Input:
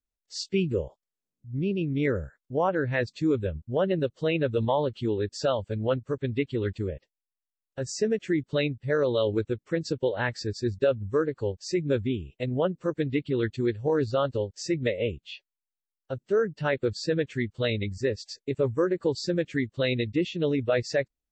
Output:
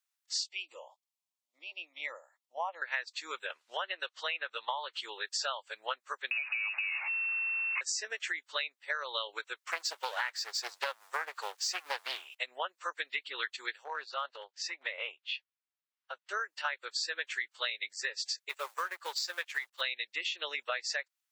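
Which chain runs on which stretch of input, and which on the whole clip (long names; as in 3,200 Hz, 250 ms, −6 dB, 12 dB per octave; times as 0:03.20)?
0:00.47–0:02.82: high-pass filter 300 Hz 24 dB per octave + high-shelf EQ 3,000 Hz −7.5 dB + phaser with its sweep stopped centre 410 Hz, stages 6
0:03.50–0:04.93: high-pass filter 510 Hz 6 dB per octave + high-frequency loss of the air 79 metres + multiband upward and downward compressor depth 70%
0:06.31–0:07.81: converter with a step at zero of −33 dBFS + downward compressor 4 to 1, threshold −33 dBFS + voice inversion scrambler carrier 2,700 Hz
0:09.67–0:12.35: mu-law and A-law mismatch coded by mu + highs frequency-modulated by the lows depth 0.4 ms
0:13.84–0:16.29: low-pass filter 3,700 Hz + downward compressor 4 to 1, threshold −27 dBFS + transient designer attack −2 dB, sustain −6 dB
0:18.49–0:19.81: mu-law and A-law mismatch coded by A + low-shelf EQ 220 Hz −11 dB
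whole clip: inverse Chebyshev high-pass filter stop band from 160 Hz, stop band 80 dB; downward compressor 10 to 1, threshold −39 dBFS; level +8 dB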